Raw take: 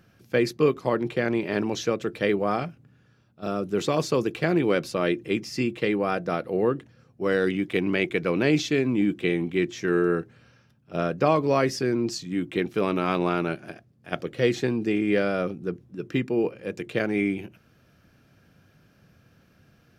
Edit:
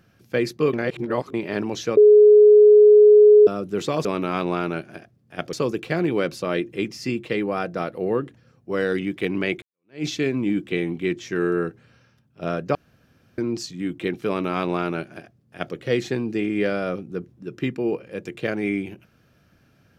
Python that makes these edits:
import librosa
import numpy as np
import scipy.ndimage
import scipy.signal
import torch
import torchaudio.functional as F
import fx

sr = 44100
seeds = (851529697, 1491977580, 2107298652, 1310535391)

y = fx.edit(x, sr, fx.reverse_span(start_s=0.73, length_s=0.61),
    fx.bleep(start_s=1.97, length_s=1.5, hz=420.0, db=-7.5),
    fx.fade_in_span(start_s=8.14, length_s=0.43, curve='exp'),
    fx.room_tone_fill(start_s=11.27, length_s=0.63),
    fx.duplicate(start_s=12.79, length_s=1.48, to_s=4.05), tone=tone)